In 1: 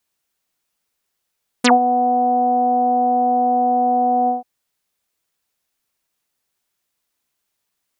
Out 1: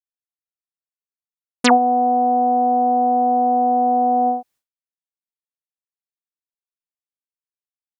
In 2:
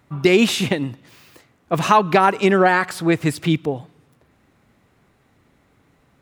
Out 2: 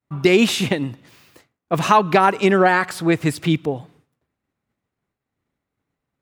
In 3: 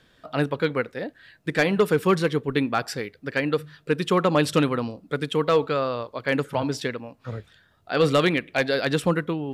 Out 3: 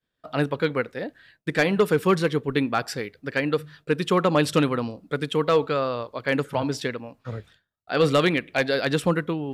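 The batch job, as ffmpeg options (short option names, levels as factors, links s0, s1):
-af "agate=range=0.0224:threshold=0.00562:ratio=3:detection=peak"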